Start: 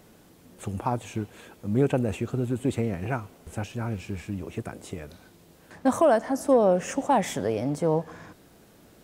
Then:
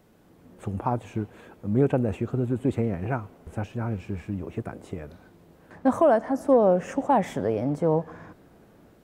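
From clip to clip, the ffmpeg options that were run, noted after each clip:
-filter_complex "[0:a]equalizer=f=8.8k:t=o:w=2.8:g=-6.5,acrossover=split=2100[a][b];[a]dynaudnorm=f=110:g=5:m=6dB[c];[c][b]amix=inputs=2:normalize=0,volume=-4.5dB"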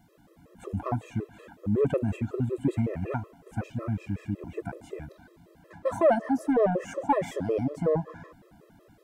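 -af "asoftclip=type=tanh:threshold=-11.5dB,afftfilt=real='re*gt(sin(2*PI*5.4*pts/sr)*(1-2*mod(floor(b*sr/1024/340),2)),0)':imag='im*gt(sin(2*PI*5.4*pts/sr)*(1-2*mod(floor(b*sr/1024/340),2)),0)':win_size=1024:overlap=0.75,volume=1.5dB"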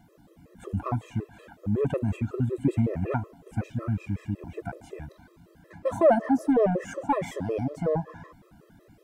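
-af "aphaser=in_gain=1:out_gain=1:delay=1.4:decay=0.32:speed=0.32:type=triangular"

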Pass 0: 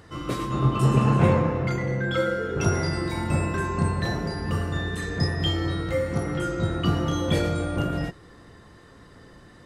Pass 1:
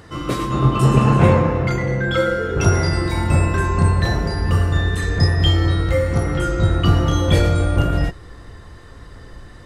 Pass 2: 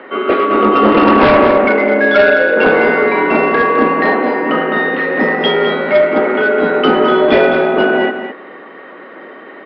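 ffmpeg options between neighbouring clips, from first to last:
-af "asubboost=boost=4.5:cutoff=81,volume=6.5dB"
-af "highpass=f=200:t=q:w=0.5412,highpass=f=200:t=q:w=1.307,lowpass=f=2.8k:t=q:w=0.5176,lowpass=f=2.8k:t=q:w=0.7071,lowpass=f=2.8k:t=q:w=1.932,afreqshift=78,aresample=11025,aeval=exprs='0.562*sin(PI/2*2.24*val(0)/0.562)':c=same,aresample=44100,aecho=1:1:209:0.376,volume=1dB"

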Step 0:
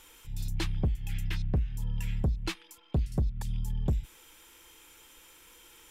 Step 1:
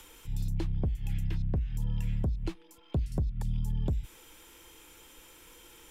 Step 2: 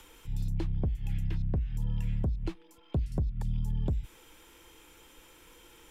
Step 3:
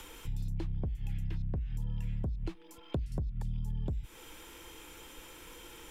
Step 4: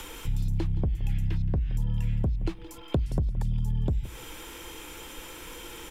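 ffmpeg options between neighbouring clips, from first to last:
-filter_complex "[0:a]acrossover=split=98|720[a][b][c];[a]acompressor=threshold=-35dB:ratio=4[d];[b]acompressor=threshold=-39dB:ratio=4[e];[c]acompressor=threshold=-59dB:ratio=4[f];[d][e][f]amix=inputs=3:normalize=0,volume=5.5dB"
-af "highshelf=f=4.3k:g=-5.5"
-af "acompressor=threshold=-40dB:ratio=3,volume=5.5dB"
-af "aecho=1:1:171|342|513:0.133|0.04|0.012,volume=8dB"

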